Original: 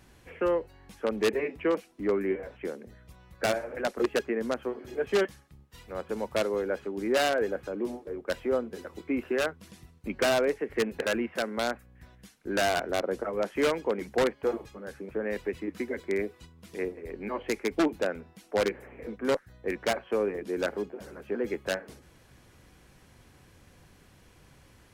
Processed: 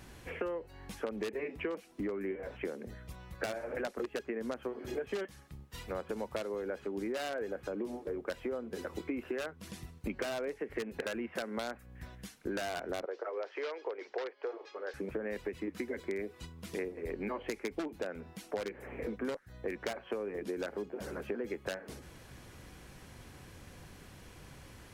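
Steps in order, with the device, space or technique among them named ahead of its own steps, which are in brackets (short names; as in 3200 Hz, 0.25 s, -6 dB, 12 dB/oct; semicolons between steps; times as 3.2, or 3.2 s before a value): serial compression, leveller first (compressor 2:1, threshold -28 dBFS, peak gain reduction 5 dB; compressor 6:1, threshold -39 dBFS, peak gain reduction 14 dB); 13.05–14.94 elliptic band-pass 400–5200 Hz, stop band 40 dB; gain +4.5 dB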